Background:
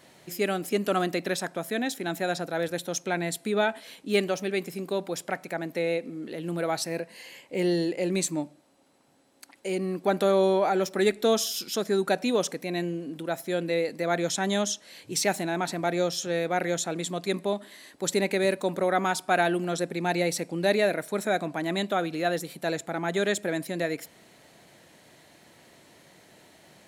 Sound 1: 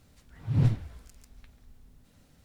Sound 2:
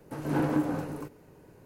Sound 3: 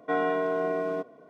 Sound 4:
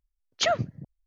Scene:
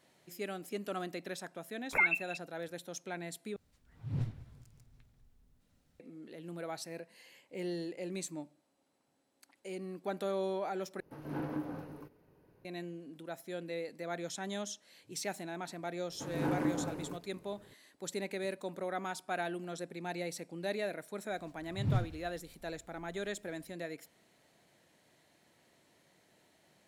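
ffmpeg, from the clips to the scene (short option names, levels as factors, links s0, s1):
-filter_complex "[1:a]asplit=2[s0][s1];[2:a]asplit=2[s2][s3];[0:a]volume=0.224[s4];[4:a]lowpass=f=2400:t=q:w=0.5098,lowpass=f=2400:t=q:w=0.6013,lowpass=f=2400:t=q:w=0.9,lowpass=f=2400:t=q:w=2.563,afreqshift=-2800[s5];[s0]aecho=1:1:198|396|594|792|990:0.106|0.0604|0.0344|0.0196|0.0112[s6];[s2]equalizer=f=7600:t=o:w=0.45:g=-15[s7];[s4]asplit=3[s8][s9][s10];[s8]atrim=end=3.564[s11];[s6]atrim=end=2.44,asetpts=PTS-STARTPTS,volume=0.251[s12];[s9]atrim=start=5.996:end=11.004[s13];[s7]atrim=end=1.65,asetpts=PTS-STARTPTS,volume=0.282[s14];[s10]atrim=start=12.646[s15];[s5]atrim=end=1.06,asetpts=PTS-STARTPTS,volume=0.668,afade=t=in:d=0.004:c=hsin,afade=t=out:st=1.056:d=0.004:c=hsin,adelay=1520[s16];[s3]atrim=end=1.65,asetpts=PTS-STARTPTS,volume=0.501,afade=t=in:d=0.004:c=hsin,afade=t=out:st=1.646:d=0.004:c=hsin,adelay=16090[s17];[s1]atrim=end=2.44,asetpts=PTS-STARTPTS,volume=0.398,afade=t=in:d=0.004:c=hsin,afade=t=out:st=2.436:d=0.004:c=hsin,adelay=21300[s18];[s11][s12]acrossfade=d=0.004:c1=hsin:c2=hsin[s19];[s19][s13]acrossfade=d=0.004:c1=hsin:c2=hsin[s20];[s20][s14]acrossfade=d=0.004:c1=hsin:c2=hsin[s21];[s21][s15]acrossfade=d=0.004:c1=hsin:c2=hsin[s22];[s22][s16][s17][s18]amix=inputs=4:normalize=0"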